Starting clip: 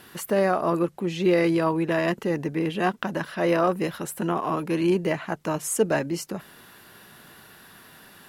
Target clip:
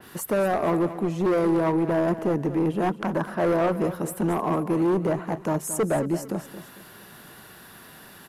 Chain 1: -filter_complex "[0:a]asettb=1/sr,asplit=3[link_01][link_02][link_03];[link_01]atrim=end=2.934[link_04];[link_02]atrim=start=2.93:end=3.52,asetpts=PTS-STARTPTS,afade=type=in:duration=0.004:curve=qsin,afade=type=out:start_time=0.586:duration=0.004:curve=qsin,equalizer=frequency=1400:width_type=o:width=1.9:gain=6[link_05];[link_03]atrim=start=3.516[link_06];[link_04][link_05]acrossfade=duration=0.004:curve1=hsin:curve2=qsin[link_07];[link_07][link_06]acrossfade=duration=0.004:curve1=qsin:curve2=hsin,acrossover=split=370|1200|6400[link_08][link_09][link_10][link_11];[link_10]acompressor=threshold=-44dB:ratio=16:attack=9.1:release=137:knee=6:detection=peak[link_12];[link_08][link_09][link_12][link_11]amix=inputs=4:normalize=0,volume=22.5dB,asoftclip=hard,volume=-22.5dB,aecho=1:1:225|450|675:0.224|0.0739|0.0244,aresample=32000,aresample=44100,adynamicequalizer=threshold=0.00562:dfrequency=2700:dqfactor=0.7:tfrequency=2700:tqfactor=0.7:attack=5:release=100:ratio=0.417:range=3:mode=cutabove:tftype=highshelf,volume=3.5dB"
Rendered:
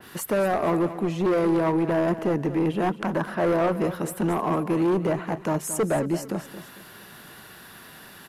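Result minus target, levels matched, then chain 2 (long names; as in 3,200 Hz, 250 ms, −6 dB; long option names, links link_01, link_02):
downward compressor: peak gain reduction −8.5 dB
-filter_complex "[0:a]asettb=1/sr,asplit=3[link_01][link_02][link_03];[link_01]atrim=end=2.934[link_04];[link_02]atrim=start=2.93:end=3.52,asetpts=PTS-STARTPTS,afade=type=in:duration=0.004:curve=qsin,afade=type=out:start_time=0.586:duration=0.004:curve=qsin,equalizer=frequency=1400:width_type=o:width=1.9:gain=6[link_05];[link_03]atrim=start=3.516[link_06];[link_04][link_05]acrossfade=duration=0.004:curve1=hsin:curve2=qsin[link_07];[link_07][link_06]acrossfade=duration=0.004:curve1=qsin:curve2=hsin,acrossover=split=370|1200|6400[link_08][link_09][link_10][link_11];[link_10]acompressor=threshold=-53dB:ratio=16:attack=9.1:release=137:knee=6:detection=peak[link_12];[link_08][link_09][link_12][link_11]amix=inputs=4:normalize=0,volume=22.5dB,asoftclip=hard,volume=-22.5dB,aecho=1:1:225|450|675:0.224|0.0739|0.0244,aresample=32000,aresample=44100,adynamicequalizer=threshold=0.00562:dfrequency=2700:dqfactor=0.7:tfrequency=2700:tqfactor=0.7:attack=5:release=100:ratio=0.417:range=3:mode=cutabove:tftype=highshelf,volume=3.5dB"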